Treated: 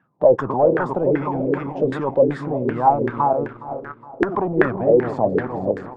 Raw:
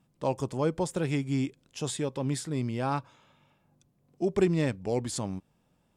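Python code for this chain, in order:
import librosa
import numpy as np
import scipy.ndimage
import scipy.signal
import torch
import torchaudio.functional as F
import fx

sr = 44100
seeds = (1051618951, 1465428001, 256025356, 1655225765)

p1 = fx.reverse_delay_fb(x, sr, ms=238, feedback_pct=48, wet_db=-6.5)
p2 = scipy.signal.sosfilt(scipy.signal.butter(4, 98.0, 'highpass', fs=sr, output='sos'), p1)
p3 = fx.leveller(p2, sr, passes=2)
p4 = fx.over_compress(p3, sr, threshold_db=-31.0, ratio=-1.0)
p5 = p3 + (p4 * 10.0 ** (1.0 / 20.0))
p6 = fx.filter_lfo_lowpass(p5, sr, shape='saw_down', hz=2.6, low_hz=390.0, high_hz=1700.0, q=7.3)
p7 = p6 + fx.echo_feedback(p6, sr, ms=415, feedback_pct=46, wet_db=-16, dry=0)
p8 = fx.hpss(p7, sr, part='harmonic', gain_db=-7)
y = p8 * 10.0 ** (-1.0 / 20.0)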